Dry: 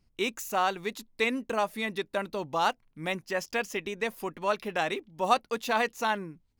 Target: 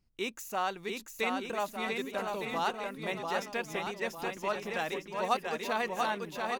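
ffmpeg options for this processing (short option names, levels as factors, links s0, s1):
-af "aecho=1:1:690|1208|1596|1887|2105:0.631|0.398|0.251|0.158|0.1,volume=0.531"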